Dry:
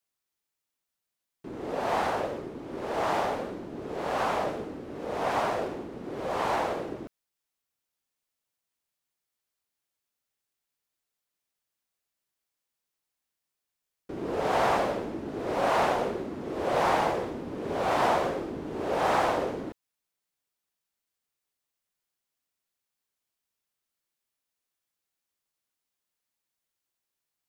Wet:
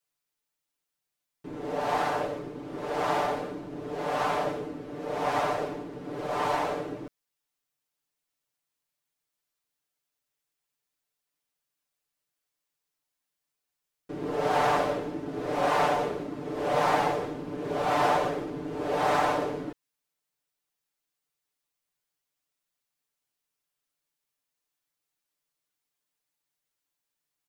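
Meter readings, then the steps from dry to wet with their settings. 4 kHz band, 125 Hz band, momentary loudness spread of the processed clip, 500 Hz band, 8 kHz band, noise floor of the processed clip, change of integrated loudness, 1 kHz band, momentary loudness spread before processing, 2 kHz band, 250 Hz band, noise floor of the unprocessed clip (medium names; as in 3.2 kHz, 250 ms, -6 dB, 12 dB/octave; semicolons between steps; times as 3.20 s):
+0.5 dB, +1.5 dB, 13 LU, 0.0 dB, +0.5 dB, -85 dBFS, +0.5 dB, +0.5 dB, 13 LU, +0.5 dB, +0.5 dB, under -85 dBFS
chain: comb 6.8 ms, depth 97%; trim -2.5 dB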